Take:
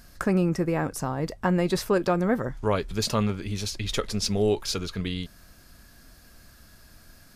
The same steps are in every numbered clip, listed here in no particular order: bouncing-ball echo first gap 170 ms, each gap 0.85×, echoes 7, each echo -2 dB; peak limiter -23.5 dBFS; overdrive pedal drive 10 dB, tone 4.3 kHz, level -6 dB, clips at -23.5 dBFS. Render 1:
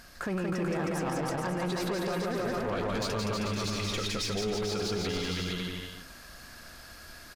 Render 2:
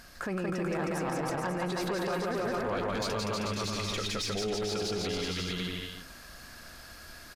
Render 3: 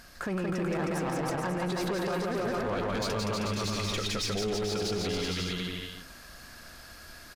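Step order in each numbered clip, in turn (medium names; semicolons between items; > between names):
overdrive pedal > bouncing-ball echo > peak limiter; bouncing-ball echo > peak limiter > overdrive pedal; bouncing-ball echo > overdrive pedal > peak limiter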